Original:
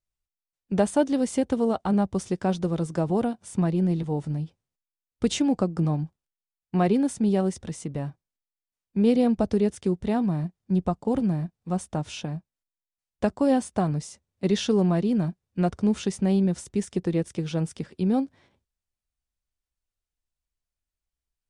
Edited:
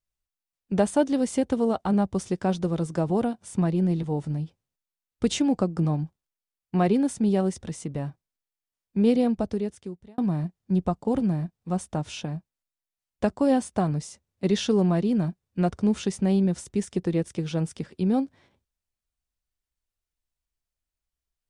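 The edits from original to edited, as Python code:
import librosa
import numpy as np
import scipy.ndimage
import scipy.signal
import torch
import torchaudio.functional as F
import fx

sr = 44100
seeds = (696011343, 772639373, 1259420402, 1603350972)

y = fx.edit(x, sr, fx.fade_out_span(start_s=9.08, length_s=1.1), tone=tone)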